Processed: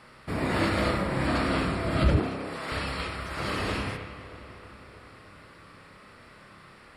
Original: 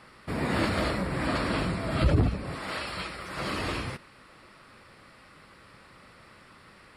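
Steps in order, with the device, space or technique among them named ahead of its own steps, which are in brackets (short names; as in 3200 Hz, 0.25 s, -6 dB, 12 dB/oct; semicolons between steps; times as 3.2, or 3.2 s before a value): dub delay into a spring reverb (darkening echo 0.313 s, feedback 70%, low-pass 4200 Hz, level -15 dB; spring tank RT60 1 s, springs 30 ms, chirp 55 ms, DRR 3.5 dB); 2.19–2.72 HPF 280 Hz 12 dB/oct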